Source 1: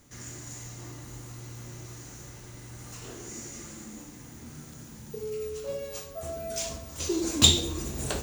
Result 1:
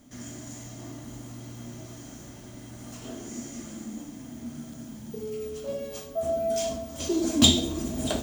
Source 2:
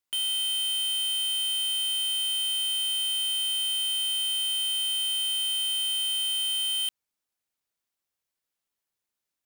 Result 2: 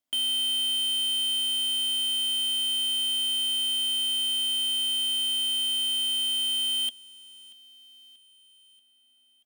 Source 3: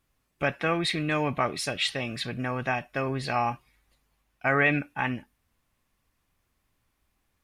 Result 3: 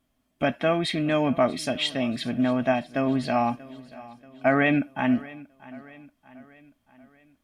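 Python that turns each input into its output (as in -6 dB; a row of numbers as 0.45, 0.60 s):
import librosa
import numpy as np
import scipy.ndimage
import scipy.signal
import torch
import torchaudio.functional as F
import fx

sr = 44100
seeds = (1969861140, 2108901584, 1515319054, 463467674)

p1 = fx.small_body(x, sr, hz=(250.0, 640.0, 3200.0), ring_ms=45, db=14)
p2 = p1 + fx.echo_feedback(p1, sr, ms=634, feedback_pct=51, wet_db=-20, dry=0)
y = p2 * 10.0 ** (-2.0 / 20.0)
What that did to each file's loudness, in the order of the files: +0.5, +1.0, +3.0 LU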